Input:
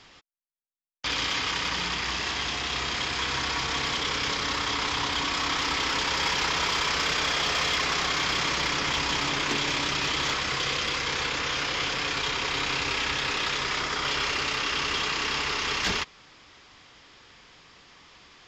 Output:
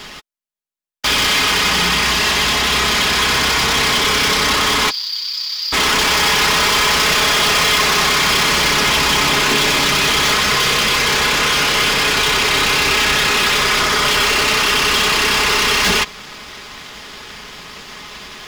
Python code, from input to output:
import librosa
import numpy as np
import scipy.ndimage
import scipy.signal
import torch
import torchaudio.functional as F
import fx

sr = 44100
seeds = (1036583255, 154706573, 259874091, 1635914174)

y = fx.bandpass_q(x, sr, hz=4700.0, q=16.0, at=(4.89, 5.72), fade=0.02)
y = fx.leveller(y, sr, passes=3)
y = y + 0.46 * np.pad(y, (int(4.8 * sr / 1000.0), 0))[:len(y)]
y = y * librosa.db_to_amplitude(8.0)